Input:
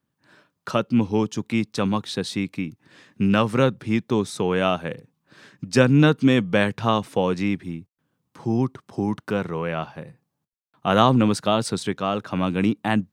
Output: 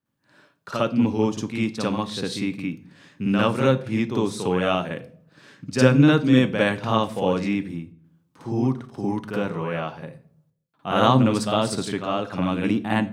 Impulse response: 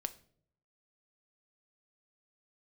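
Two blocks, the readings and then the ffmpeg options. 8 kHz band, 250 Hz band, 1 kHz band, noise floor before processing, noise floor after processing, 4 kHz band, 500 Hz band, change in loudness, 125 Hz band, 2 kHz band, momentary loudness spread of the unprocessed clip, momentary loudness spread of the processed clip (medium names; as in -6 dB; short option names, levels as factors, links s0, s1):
-0.5 dB, 0.0 dB, -0.5 dB, -78 dBFS, -69 dBFS, -0.5 dB, 0.0 dB, 0.0 dB, 0.0 dB, -0.5 dB, 13 LU, 15 LU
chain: -filter_complex "[0:a]asplit=2[s0][s1];[1:a]atrim=start_sample=2205,adelay=55[s2];[s1][s2]afir=irnorm=-1:irlink=0,volume=2.24[s3];[s0][s3]amix=inputs=2:normalize=0,volume=0.422"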